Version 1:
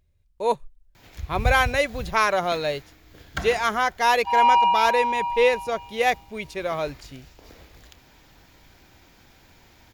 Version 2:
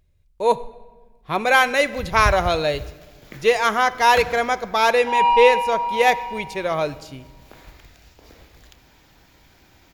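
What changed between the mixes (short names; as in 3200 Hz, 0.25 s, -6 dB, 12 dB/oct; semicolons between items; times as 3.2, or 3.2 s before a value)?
background: entry +0.80 s; reverb: on, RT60 1.5 s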